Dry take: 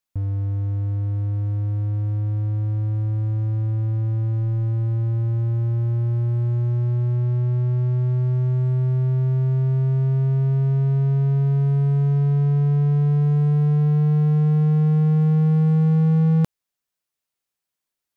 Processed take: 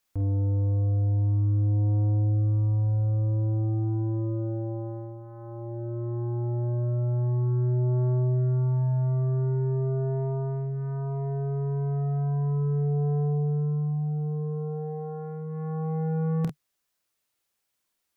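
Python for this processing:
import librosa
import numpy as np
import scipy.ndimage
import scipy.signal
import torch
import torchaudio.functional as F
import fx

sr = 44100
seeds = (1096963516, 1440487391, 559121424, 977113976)

p1 = fx.peak_eq(x, sr, hz=150.0, db=-5.5, octaves=0.23)
p2 = fx.rider(p1, sr, range_db=10, speed_s=0.5)
p3 = p1 + (p2 * 10.0 ** (1.0 / 20.0))
p4 = 10.0 ** (-25.0 / 20.0) * np.tanh(p3 / 10.0 ** (-25.0 / 20.0))
p5 = fx.room_early_taps(p4, sr, ms=(30, 48), db=(-10.0, -5.0))
y = p5 * 10.0 ** (-1.5 / 20.0)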